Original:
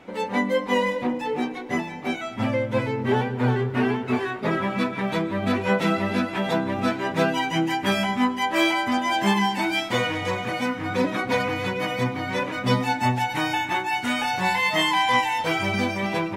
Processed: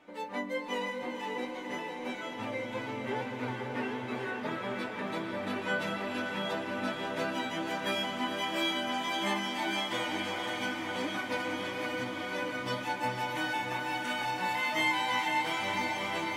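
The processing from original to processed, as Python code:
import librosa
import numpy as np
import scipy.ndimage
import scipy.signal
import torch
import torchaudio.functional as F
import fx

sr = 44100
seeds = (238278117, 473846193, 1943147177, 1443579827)

y = fx.low_shelf(x, sr, hz=240.0, db=-9.0)
y = fx.comb_fb(y, sr, f0_hz=300.0, decay_s=0.19, harmonics='all', damping=0.0, mix_pct=80)
y = fx.echo_diffused(y, sr, ms=515, feedback_pct=74, wet_db=-5.0)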